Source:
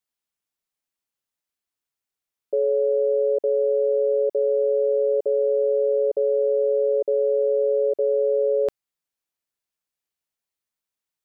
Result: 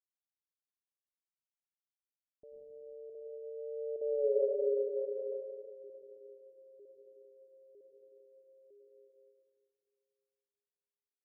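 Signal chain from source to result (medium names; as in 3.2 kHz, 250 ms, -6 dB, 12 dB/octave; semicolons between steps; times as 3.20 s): reverse the whole clip; Doppler pass-by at 4.27 s, 17 m/s, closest 1.6 m; Gaussian low-pass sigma 16 samples; reverberation RT60 2.4 s, pre-delay 86 ms, DRR -1.5 dB; in parallel at 0 dB: gain riding within 3 dB 0.5 s; on the sum: trim -8.5 dB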